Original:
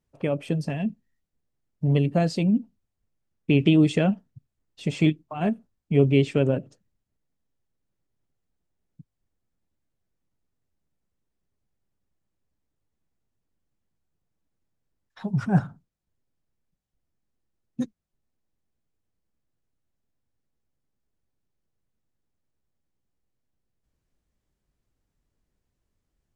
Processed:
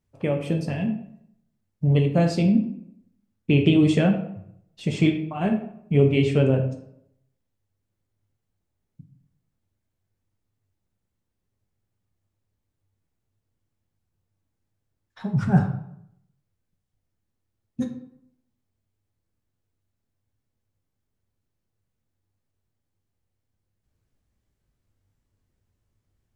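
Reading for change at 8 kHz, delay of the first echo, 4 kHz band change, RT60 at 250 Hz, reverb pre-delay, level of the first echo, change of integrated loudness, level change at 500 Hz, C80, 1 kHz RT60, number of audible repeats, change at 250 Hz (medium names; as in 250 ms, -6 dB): no reading, no echo, +1.5 dB, 0.75 s, 9 ms, no echo, +1.5 dB, +1.5 dB, 11.5 dB, 0.70 s, no echo, +1.5 dB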